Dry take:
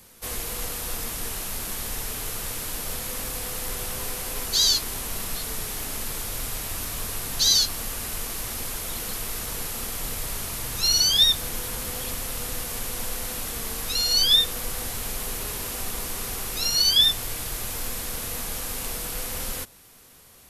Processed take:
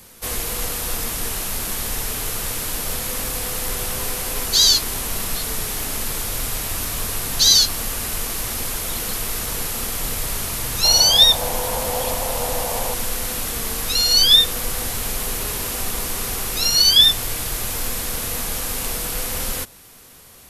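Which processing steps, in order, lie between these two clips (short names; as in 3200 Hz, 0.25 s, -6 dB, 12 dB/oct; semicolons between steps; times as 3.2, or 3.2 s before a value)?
10.84–12.94 band shelf 700 Hz +11 dB 1.2 oct; gain +6 dB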